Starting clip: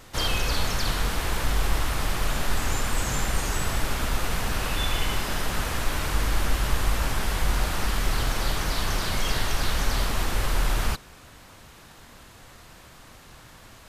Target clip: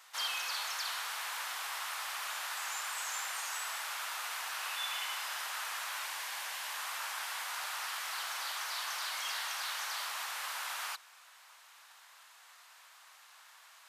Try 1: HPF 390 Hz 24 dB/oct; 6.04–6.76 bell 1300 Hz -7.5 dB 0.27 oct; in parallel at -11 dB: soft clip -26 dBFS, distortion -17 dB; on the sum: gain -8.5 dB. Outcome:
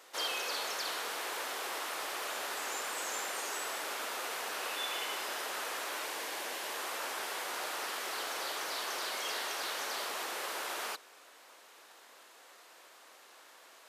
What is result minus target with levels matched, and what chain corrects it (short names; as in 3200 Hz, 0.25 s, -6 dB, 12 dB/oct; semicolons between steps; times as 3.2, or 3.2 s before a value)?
500 Hz band +13.0 dB
HPF 860 Hz 24 dB/oct; 6.04–6.76 bell 1300 Hz -7.5 dB 0.27 oct; in parallel at -11 dB: soft clip -26 dBFS, distortion -18 dB; on the sum: gain -8.5 dB